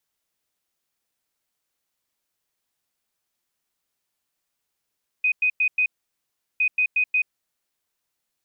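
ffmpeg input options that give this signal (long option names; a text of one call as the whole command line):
ffmpeg -f lavfi -i "aevalsrc='0.141*sin(2*PI*2500*t)*clip(min(mod(mod(t,1.36),0.18),0.08-mod(mod(t,1.36),0.18))/0.005,0,1)*lt(mod(t,1.36),0.72)':duration=2.72:sample_rate=44100" out.wav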